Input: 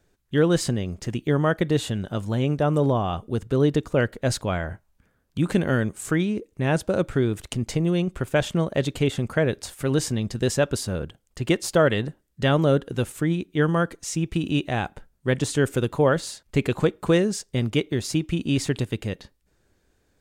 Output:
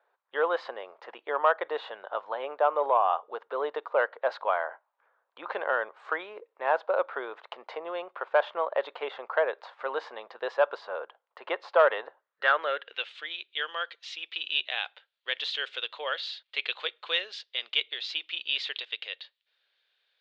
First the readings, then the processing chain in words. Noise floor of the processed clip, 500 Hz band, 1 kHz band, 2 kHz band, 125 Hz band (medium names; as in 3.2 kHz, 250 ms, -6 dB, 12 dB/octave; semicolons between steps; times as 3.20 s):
-81 dBFS, -5.5 dB, +2.5 dB, -0.5 dB, under -40 dB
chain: band-pass sweep 970 Hz -> 3.3 kHz, 12.17–13.13 s; saturation -16.5 dBFS, distortion -23 dB; Chebyshev band-pass 490–4100 Hz, order 3; trim +8.5 dB